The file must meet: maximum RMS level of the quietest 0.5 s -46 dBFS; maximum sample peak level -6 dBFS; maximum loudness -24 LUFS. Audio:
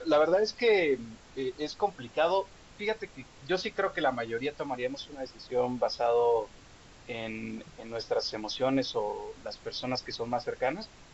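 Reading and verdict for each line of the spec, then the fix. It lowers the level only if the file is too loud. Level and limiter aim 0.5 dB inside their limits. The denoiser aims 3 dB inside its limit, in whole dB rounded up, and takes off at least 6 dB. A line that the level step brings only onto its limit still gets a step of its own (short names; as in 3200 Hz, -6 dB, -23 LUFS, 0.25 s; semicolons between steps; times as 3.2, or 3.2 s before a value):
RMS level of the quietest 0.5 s -53 dBFS: OK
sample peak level -14.0 dBFS: OK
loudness -31.0 LUFS: OK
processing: none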